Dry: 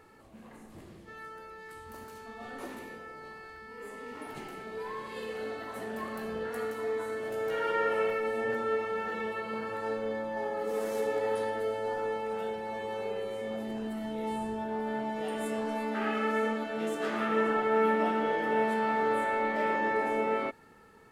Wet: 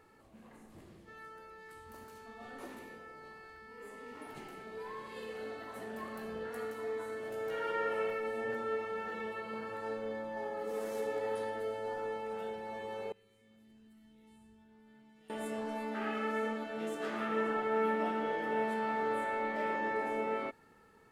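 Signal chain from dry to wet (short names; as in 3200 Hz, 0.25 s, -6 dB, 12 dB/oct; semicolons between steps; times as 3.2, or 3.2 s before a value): 13.12–15.3 passive tone stack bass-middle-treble 6-0-2; gain -5.5 dB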